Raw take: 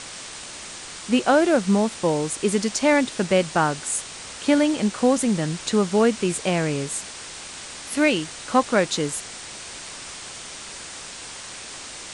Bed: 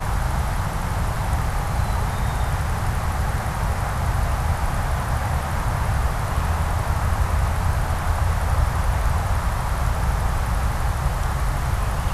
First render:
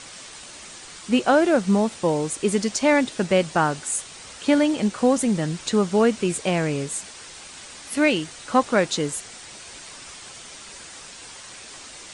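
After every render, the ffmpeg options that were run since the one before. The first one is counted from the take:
-af "afftdn=nr=6:nf=-38"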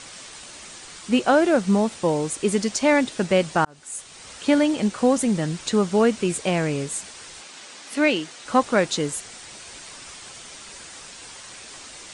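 -filter_complex "[0:a]asettb=1/sr,asplit=3[s0][s1][s2];[s0]atrim=end=7.424[s3];[s1]atrim=start=7.42:end=8.46,asetpts=PTS-STARTPTS,afade=t=in:d=0.004:c=qsin,afade=t=out:st=1.036:d=0.004:c=qsin,highpass=210,lowpass=7800[s4];[s2]atrim=start=8.456[s5];[s3][s4]acrossfade=d=0.004:c1=hsin:c2=qsin[s6];[s6][s5]acrossfade=d=0.004:c1=qsin:c2=hsin,asplit=2[s7][s8];[s7]atrim=end=3.65,asetpts=PTS-STARTPTS,afade=t=out:st=3.646:d=0.004:c=hsin[s9];[s8]atrim=start=3.65,asetpts=PTS-STARTPTS,afade=t=in:d=0.69[s10];[s9][s10]concat=n=2:v=0:a=1"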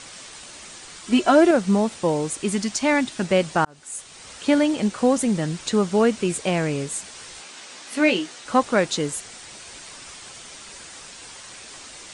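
-filter_complex "[0:a]asettb=1/sr,asplit=3[s0][s1][s2];[s0]atrim=end=1.074[s3];[s1]atrim=start=1.07:end=1.51,asetpts=PTS-STARTPTS,afade=t=in:d=0.004:c=qsin,afade=t=out:st=0.436:d=0.004:c=qsin,aecho=1:1:3:0.74,atrim=end_sample=19404[s4];[s2]atrim=start=1.506[s5];[s3][s4]acrossfade=d=0.004:c1=hsin:c2=qsin[s6];[s6][s5]acrossfade=d=0.004:c1=qsin:c2=hsin,asettb=1/sr,asplit=3[s7][s8][s9];[s7]atrim=end=2.424[s10];[s8]atrim=start=2.42:end=3.22,asetpts=PTS-STARTPTS,afade=t=in:d=0.004:c=qsin,afade=t=out:st=0.796:d=0.004:c=qsin,equalizer=f=480:t=o:w=0.34:g=-14[s11];[s9]atrim=start=3.216[s12];[s10][s11]acrossfade=d=0.004:c1=hsin:c2=qsin[s13];[s13][s12]acrossfade=d=0.004:c1=qsin:c2=hsin,asettb=1/sr,asplit=3[s14][s15][s16];[s14]atrim=end=7.114[s17];[s15]atrim=start=7.11:end=8.4,asetpts=PTS-STARTPTS,afade=t=in:d=0.004:c=qsin,afade=t=out:st=1.286:d=0.004:c=qsin,asplit=2[s18][s19];[s19]adelay=16,volume=0.501[s20];[s18][s20]amix=inputs=2:normalize=0,atrim=end_sample=56889[s21];[s16]atrim=start=8.396[s22];[s17][s21]acrossfade=d=0.004:c1=hsin:c2=qsin[s23];[s23][s22]acrossfade=d=0.004:c1=qsin:c2=hsin"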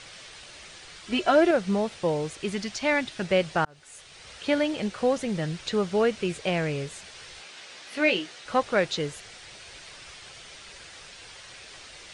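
-filter_complex "[0:a]acrossover=split=7600[s0][s1];[s1]acompressor=threshold=0.00562:ratio=4:attack=1:release=60[s2];[s0][s2]amix=inputs=2:normalize=0,equalizer=f=250:t=o:w=1:g=-10,equalizer=f=1000:t=o:w=1:g=-6,equalizer=f=8000:t=o:w=1:g=-11"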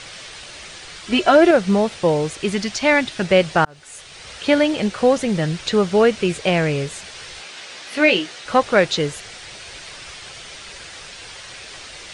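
-af "volume=2.66,alimiter=limit=0.708:level=0:latency=1"

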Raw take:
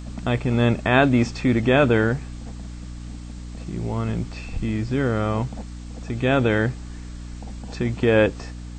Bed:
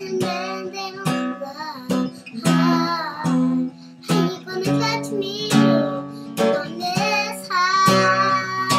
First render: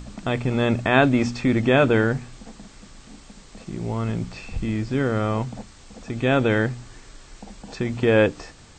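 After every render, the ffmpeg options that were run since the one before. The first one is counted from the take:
-af "bandreject=f=60:t=h:w=4,bandreject=f=120:t=h:w=4,bandreject=f=180:t=h:w=4,bandreject=f=240:t=h:w=4,bandreject=f=300:t=h:w=4"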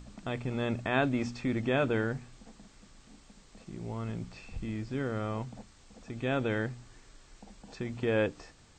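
-af "volume=0.282"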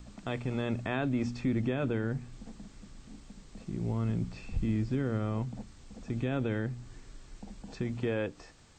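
-filter_complex "[0:a]acrossover=split=340|1200|3700[s0][s1][s2][s3];[s0]dynaudnorm=f=110:g=17:m=2.37[s4];[s4][s1][s2][s3]amix=inputs=4:normalize=0,alimiter=limit=0.0891:level=0:latency=1:release=318"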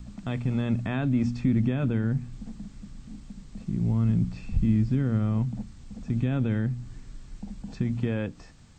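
-af "lowshelf=f=280:t=q:w=1.5:g=7"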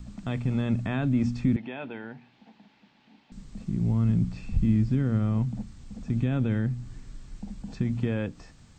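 -filter_complex "[0:a]asettb=1/sr,asplit=3[s0][s1][s2];[s0]atrim=end=1.564[s3];[s1]atrim=start=1.56:end=3.32,asetpts=PTS-STARTPTS,afade=t=in:d=0.004:c=qsin,afade=t=out:st=1.756:d=0.004:c=qsin,highpass=490,equalizer=f=520:t=q:w=4:g=-4,equalizer=f=870:t=q:w=4:g=7,equalizer=f=1200:t=q:w=4:g=-8,equalizer=f=2600:t=q:w=4:g=3,lowpass=f=3900:w=0.5412,lowpass=f=3900:w=1.3066[s4];[s2]atrim=start=3.316[s5];[s3][s4]acrossfade=d=0.004:c1=hsin:c2=qsin[s6];[s6][s5]acrossfade=d=0.004:c1=qsin:c2=hsin"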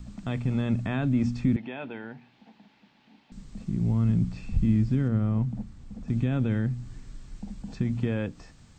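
-filter_complex "[0:a]asettb=1/sr,asplit=3[s0][s1][s2];[s0]atrim=end=5.084[s3];[s1]atrim=start=5.08:end=6.08,asetpts=PTS-STARTPTS,afade=t=in:d=0.004:c=qsin,afade=t=out:st=0.996:d=0.004:c=qsin,highshelf=f=2500:g=-8[s4];[s2]atrim=start=6.076[s5];[s3][s4]acrossfade=d=0.004:c1=hsin:c2=qsin[s6];[s6][s5]acrossfade=d=0.004:c1=qsin:c2=hsin"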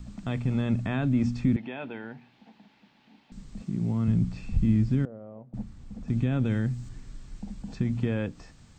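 -filter_complex "[0:a]asettb=1/sr,asplit=3[s0][s1][s2];[s0]atrim=end=3.634[s3];[s1]atrim=start=3.63:end=4.08,asetpts=PTS-STARTPTS,afade=t=in:d=0.004:c=qsin,afade=t=out:st=0.446:d=0.004:c=qsin,highpass=130[s4];[s2]atrim=start=4.076[s5];[s3][s4]acrossfade=d=0.004:c1=hsin:c2=qsin[s6];[s6][s5]acrossfade=d=0.004:c1=qsin:c2=hsin,asettb=1/sr,asplit=3[s7][s8][s9];[s7]atrim=end=5.054[s10];[s8]atrim=start=5.05:end=5.54,asetpts=PTS-STARTPTS,afade=t=in:d=0.004:c=qsin,afade=t=out:st=0.486:d=0.004:c=qsin,bandpass=f=580:t=q:w=4[s11];[s9]atrim=start=5.536[s12];[s10][s11]acrossfade=d=0.004:c1=hsin:c2=qsin[s13];[s13][s12]acrossfade=d=0.004:c1=qsin:c2=hsin,asettb=1/sr,asplit=3[s14][s15][s16];[s14]atrim=end=6.454[s17];[s15]atrim=start=6.45:end=6.89,asetpts=PTS-STARTPTS,afade=t=in:d=0.004:c=qsin,afade=t=out:st=0.436:d=0.004:c=qsin,aemphasis=mode=production:type=cd[s18];[s16]atrim=start=6.886[s19];[s17][s18]acrossfade=d=0.004:c1=hsin:c2=qsin[s20];[s20][s19]acrossfade=d=0.004:c1=qsin:c2=hsin"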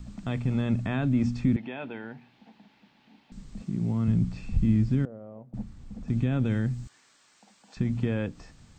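-filter_complex "[0:a]asettb=1/sr,asplit=3[s0][s1][s2];[s0]atrim=end=6.874[s3];[s1]atrim=start=6.87:end=7.77,asetpts=PTS-STARTPTS,afade=t=in:d=0.004:c=qsin,afade=t=out:st=0.896:d=0.004:c=qsin,highpass=800[s4];[s2]atrim=start=7.766[s5];[s3][s4]acrossfade=d=0.004:c1=hsin:c2=qsin[s6];[s6][s5]acrossfade=d=0.004:c1=qsin:c2=hsin"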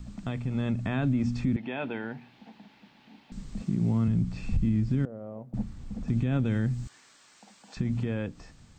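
-af "alimiter=limit=0.0794:level=0:latency=1:release=241,dynaudnorm=f=150:g=11:m=1.58"

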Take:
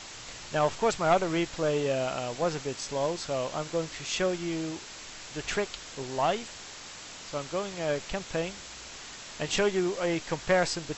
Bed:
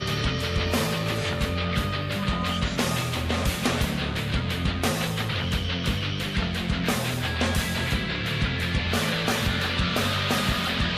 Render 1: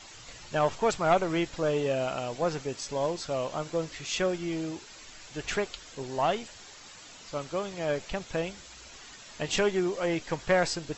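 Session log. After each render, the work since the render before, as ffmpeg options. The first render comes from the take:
-af "afftdn=nr=8:nf=-44"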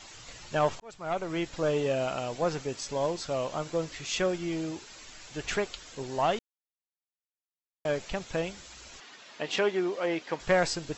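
-filter_complex "[0:a]asettb=1/sr,asplit=3[s0][s1][s2];[s0]atrim=end=9.004[s3];[s1]atrim=start=9:end=10.4,asetpts=PTS-STARTPTS,afade=t=in:d=0.004:c=qsin,afade=t=out:st=1.396:d=0.004:c=qsin,highpass=250,lowpass=4500[s4];[s2]atrim=start=10.396[s5];[s3][s4]acrossfade=d=0.004:c1=hsin:c2=qsin[s6];[s6][s5]acrossfade=d=0.004:c1=qsin:c2=hsin,asplit=4[s7][s8][s9][s10];[s7]atrim=end=0.8,asetpts=PTS-STARTPTS,afade=t=out:st=0.796:d=0.004:c=hsin[s11];[s8]atrim=start=0.8:end=6.39,asetpts=PTS-STARTPTS,afade=t=in:d=0.84,afade=t=out:st=5.586:d=0.004:c=hsin[s12];[s9]atrim=start=6.39:end=7.85,asetpts=PTS-STARTPTS,volume=0[s13];[s10]atrim=start=7.85,asetpts=PTS-STARTPTS,afade=t=in:d=0.004:c=hsin[s14];[s11][s12][s13][s14]concat=n=4:v=0:a=1"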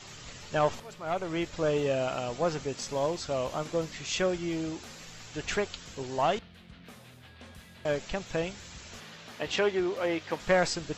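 -filter_complex "[1:a]volume=0.0562[s0];[0:a][s0]amix=inputs=2:normalize=0"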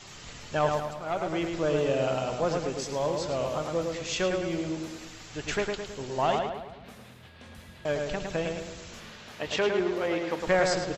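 -filter_complex "[0:a]asplit=2[s0][s1];[s1]adelay=107,lowpass=f=2900:p=1,volume=0.668,asplit=2[s2][s3];[s3]adelay=107,lowpass=f=2900:p=1,volume=0.53,asplit=2[s4][s5];[s5]adelay=107,lowpass=f=2900:p=1,volume=0.53,asplit=2[s6][s7];[s7]adelay=107,lowpass=f=2900:p=1,volume=0.53,asplit=2[s8][s9];[s9]adelay=107,lowpass=f=2900:p=1,volume=0.53,asplit=2[s10][s11];[s11]adelay=107,lowpass=f=2900:p=1,volume=0.53,asplit=2[s12][s13];[s13]adelay=107,lowpass=f=2900:p=1,volume=0.53[s14];[s0][s2][s4][s6][s8][s10][s12][s14]amix=inputs=8:normalize=0"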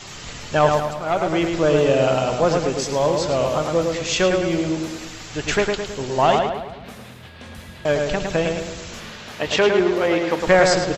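-af "volume=2.99"

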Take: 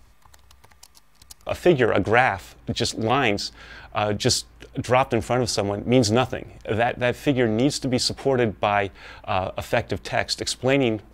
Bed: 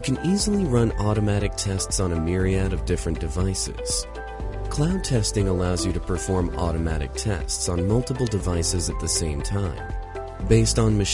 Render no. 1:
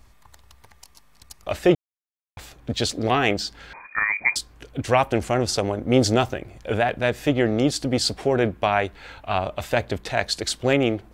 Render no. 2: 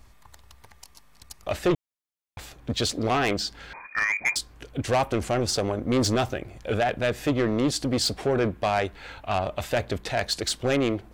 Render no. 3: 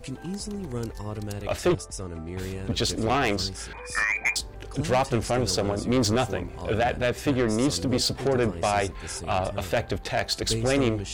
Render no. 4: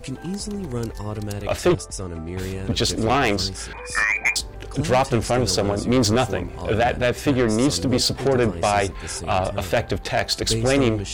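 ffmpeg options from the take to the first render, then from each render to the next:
-filter_complex "[0:a]asettb=1/sr,asplit=3[s0][s1][s2];[s0]atrim=end=3.734[s3];[s1]atrim=start=3.73:end=4.36,asetpts=PTS-STARTPTS,afade=t=in:d=0.004:c=qsin,afade=t=out:st=0.626:d=0.004:c=qsin,lowpass=f=2100:t=q:w=0.5098,lowpass=f=2100:t=q:w=0.6013,lowpass=f=2100:t=q:w=0.9,lowpass=f=2100:t=q:w=2.563,afreqshift=-2500[s4];[s2]atrim=start=4.356[s5];[s3][s4]acrossfade=d=0.004:c1=hsin:c2=qsin[s6];[s6][s5]acrossfade=d=0.004:c1=qsin:c2=hsin,asplit=3[s7][s8][s9];[s7]atrim=end=1.75,asetpts=PTS-STARTPTS,afade=t=out:st=1.746:d=0.004:c=hsin[s10];[s8]atrim=start=1.75:end=2.37,asetpts=PTS-STARTPTS,volume=0[s11];[s9]atrim=start=2.37,asetpts=PTS-STARTPTS,afade=t=in:d=0.004:c=hsin[s12];[s10][s11][s12]concat=n=3:v=0:a=1"
-af "asoftclip=type=tanh:threshold=0.15"
-filter_complex "[1:a]volume=0.251[s0];[0:a][s0]amix=inputs=2:normalize=0"
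-af "volume=1.68"

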